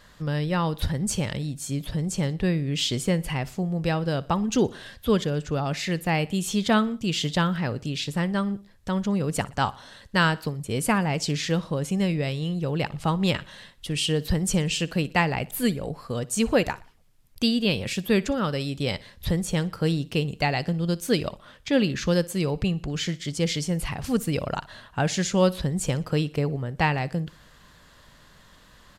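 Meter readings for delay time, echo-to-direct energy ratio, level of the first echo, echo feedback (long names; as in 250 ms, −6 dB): 60 ms, −20.0 dB, −21.0 dB, 47%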